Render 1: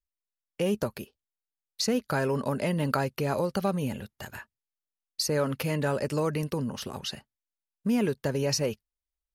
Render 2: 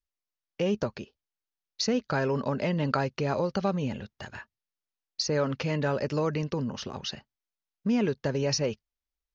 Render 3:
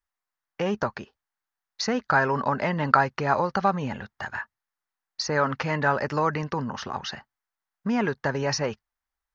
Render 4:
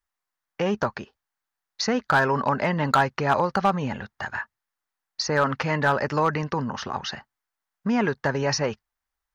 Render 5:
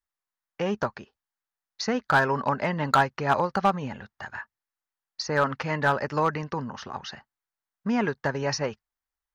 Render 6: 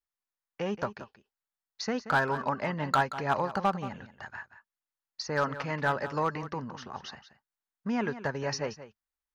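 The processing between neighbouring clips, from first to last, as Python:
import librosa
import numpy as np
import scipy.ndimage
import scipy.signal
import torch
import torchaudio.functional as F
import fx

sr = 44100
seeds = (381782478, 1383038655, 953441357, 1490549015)

y1 = scipy.signal.sosfilt(scipy.signal.butter(12, 6500.0, 'lowpass', fs=sr, output='sos'), x)
y2 = fx.band_shelf(y1, sr, hz=1200.0, db=11.0, octaves=1.7)
y3 = np.clip(y2, -10.0 ** (-14.0 / 20.0), 10.0 ** (-14.0 / 20.0))
y3 = y3 * 10.0 ** (2.0 / 20.0)
y4 = fx.upward_expand(y3, sr, threshold_db=-30.0, expansion=1.5)
y5 = y4 + 10.0 ** (-13.5 / 20.0) * np.pad(y4, (int(179 * sr / 1000.0), 0))[:len(y4)]
y5 = y5 * 10.0 ** (-5.0 / 20.0)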